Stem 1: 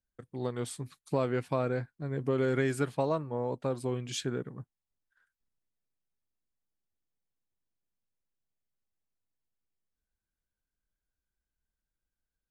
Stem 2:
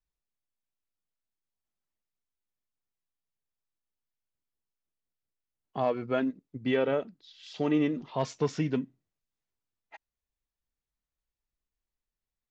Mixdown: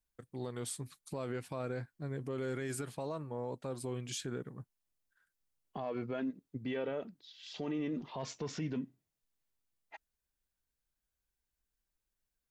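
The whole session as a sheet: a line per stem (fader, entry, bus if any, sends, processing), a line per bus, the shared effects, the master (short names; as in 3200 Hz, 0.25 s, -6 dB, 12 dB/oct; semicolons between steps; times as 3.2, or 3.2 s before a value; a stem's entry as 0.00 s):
-4.0 dB, 0.00 s, no send, high shelf 4900 Hz +8.5 dB
-1.5 dB, 0.00 s, no send, notch 1300 Hz, Q 28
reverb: off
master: limiter -29.5 dBFS, peak gain reduction 12 dB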